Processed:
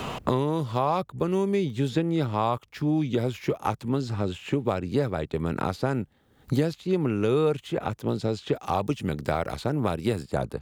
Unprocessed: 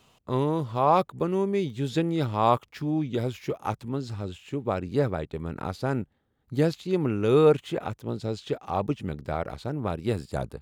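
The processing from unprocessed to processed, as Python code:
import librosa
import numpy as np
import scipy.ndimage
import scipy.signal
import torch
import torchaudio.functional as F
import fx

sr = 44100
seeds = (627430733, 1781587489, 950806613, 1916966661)

y = fx.high_shelf(x, sr, hz=3400.0, db=11.0, at=(8.55, 10.23))
y = fx.band_squash(y, sr, depth_pct=100)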